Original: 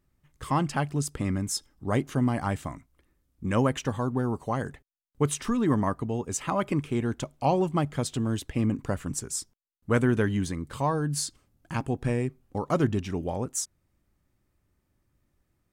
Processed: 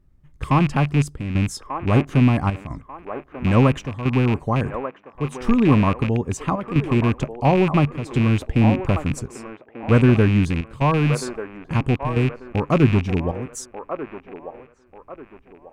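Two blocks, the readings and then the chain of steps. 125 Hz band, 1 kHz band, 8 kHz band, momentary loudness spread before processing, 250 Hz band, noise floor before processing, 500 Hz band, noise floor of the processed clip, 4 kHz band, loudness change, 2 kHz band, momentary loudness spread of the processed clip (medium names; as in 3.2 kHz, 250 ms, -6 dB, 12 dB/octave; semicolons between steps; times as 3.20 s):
+10.5 dB, +6.0 dB, -4.5 dB, 9 LU, +8.5 dB, -75 dBFS, +6.5 dB, -53 dBFS, +4.0 dB, +8.5 dB, +8.5 dB, 17 LU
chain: rattle on loud lows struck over -31 dBFS, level -19 dBFS; dynamic bell 1.1 kHz, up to +5 dB, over -44 dBFS, Q 5.4; square tremolo 0.74 Hz, depth 65%, duty 85%; tilt EQ -2.5 dB/octave; on a send: feedback echo behind a band-pass 1190 ms, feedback 33%, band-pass 810 Hz, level -6.5 dB; on the sum: trim +3.5 dB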